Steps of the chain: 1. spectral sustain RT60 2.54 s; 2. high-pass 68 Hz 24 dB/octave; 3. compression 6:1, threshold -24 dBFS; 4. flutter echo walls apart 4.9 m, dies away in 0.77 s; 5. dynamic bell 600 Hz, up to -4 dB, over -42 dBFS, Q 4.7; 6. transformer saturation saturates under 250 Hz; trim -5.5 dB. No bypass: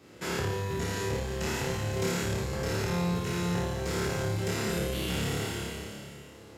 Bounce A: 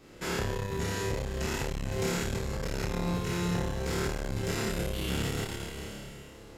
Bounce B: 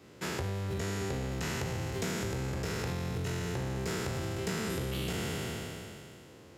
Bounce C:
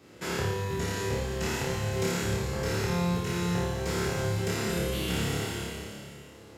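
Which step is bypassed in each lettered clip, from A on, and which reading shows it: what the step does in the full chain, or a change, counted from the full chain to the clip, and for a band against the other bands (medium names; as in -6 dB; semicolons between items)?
2, momentary loudness spread change +1 LU; 4, loudness change -4.0 LU; 6, loudness change +1.0 LU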